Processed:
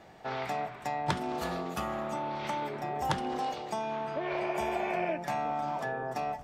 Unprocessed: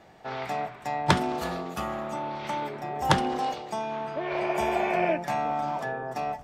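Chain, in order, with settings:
downward compressor 2.5 to 1, threshold −31 dBFS, peak gain reduction 11 dB

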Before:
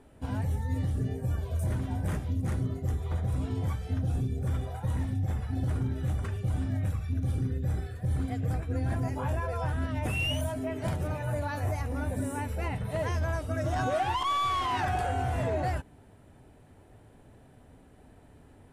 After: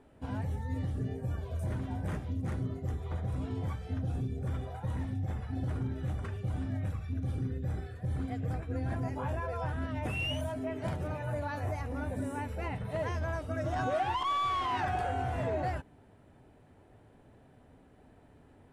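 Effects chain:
low-pass filter 3,800 Hz 6 dB per octave
low-shelf EQ 99 Hz −5.5 dB
level −2 dB

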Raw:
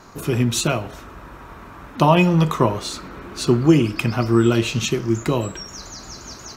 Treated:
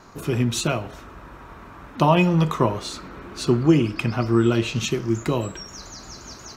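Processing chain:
high-shelf EQ 8,700 Hz −5.5 dB, from 0:03.63 −11 dB, from 0:04.76 −3 dB
level −2.5 dB

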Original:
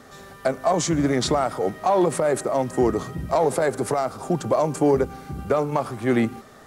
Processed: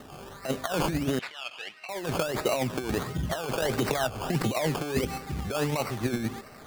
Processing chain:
compressor whose output falls as the input rises −23 dBFS, ratio −0.5
phase shifter 1.8 Hz, delay 2.4 ms, feedback 23%
sample-and-hold swept by an LFO 18×, swing 60% 1.5 Hz
0:01.19–0:01.89: resonant band-pass 2,700 Hz, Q 2.5
0:03.62–0:05.18: multiband upward and downward compressor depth 100%
level −4 dB

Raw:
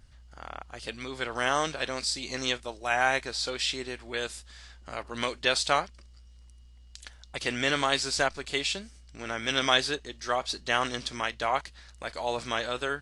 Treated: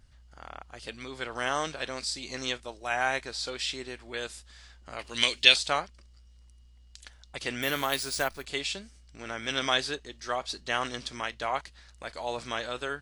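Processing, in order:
0:04.99–0:05.56: high shelf with overshoot 1,900 Hz +11.5 dB, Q 1.5
0:07.62–0:08.45: bad sample-rate conversion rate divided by 3×, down none, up hold
level −3 dB

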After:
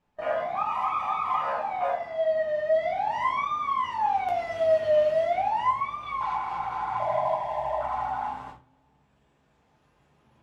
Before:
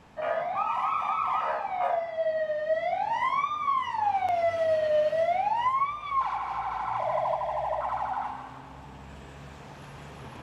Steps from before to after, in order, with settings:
noise gate with hold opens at −31 dBFS
rectangular room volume 120 cubic metres, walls furnished, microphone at 1.3 metres
level −2.5 dB

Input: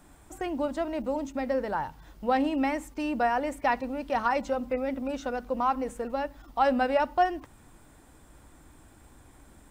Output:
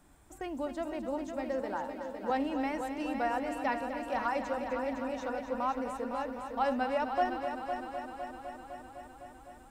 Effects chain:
0:01.60–0:02.30: high-pass filter 180 Hz 24 dB per octave
on a send: echo machine with several playback heads 254 ms, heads first and second, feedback 68%, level −10 dB
on the sum: level −6.5 dB

